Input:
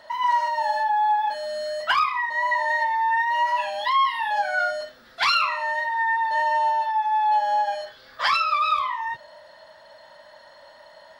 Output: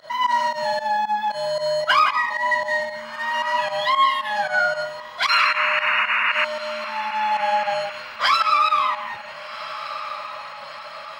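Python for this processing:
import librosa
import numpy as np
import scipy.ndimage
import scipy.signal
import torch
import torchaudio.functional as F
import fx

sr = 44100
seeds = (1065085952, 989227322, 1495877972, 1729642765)

p1 = fx.octave_divider(x, sr, octaves=2, level_db=-6.0)
p2 = 10.0 ** (-28.0 / 20.0) * np.tanh(p1 / 10.0 ** (-28.0 / 20.0))
p3 = p1 + F.gain(torch.from_numpy(p2), -9.5).numpy()
p4 = fx.peak_eq(p3, sr, hz=210.0, db=-5.0, octaves=2.4)
p5 = fx.notch_comb(p4, sr, f0_hz=900.0)
p6 = p5 + 10.0 ** (-9.0 / 20.0) * np.pad(p5, (int(166 * sr / 1000.0), 0))[:len(p5)]
p7 = fx.spec_paint(p6, sr, seeds[0], shape='noise', start_s=5.28, length_s=1.17, low_hz=930.0, high_hz=2900.0, level_db=-22.0)
p8 = fx.volume_shaper(p7, sr, bpm=114, per_beat=2, depth_db=-18, release_ms=83.0, shape='fast start')
p9 = p8 + fx.echo_diffused(p8, sr, ms=1421, feedback_pct=52, wet_db=-14.5, dry=0)
p10 = fx.rider(p9, sr, range_db=3, speed_s=2.0)
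y = F.gain(torch.from_numpy(p10), 3.0).numpy()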